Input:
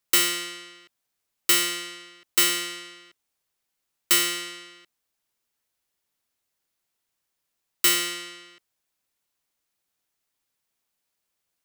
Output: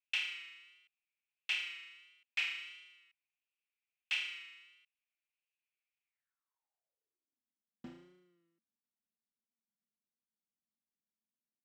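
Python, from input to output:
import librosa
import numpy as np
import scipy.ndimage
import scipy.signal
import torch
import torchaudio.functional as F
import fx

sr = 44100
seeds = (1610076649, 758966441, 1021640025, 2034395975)

y = np.repeat(x[::4], 4)[:len(x)]
y = fx.filter_sweep_bandpass(y, sr, from_hz=2500.0, to_hz=220.0, start_s=6.02, end_s=7.46, q=7.7)
y = fx.vibrato(y, sr, rate_hz=1.5, depth_cents=60.0)
y = y * librosa.db_to_amplitude(-5.0)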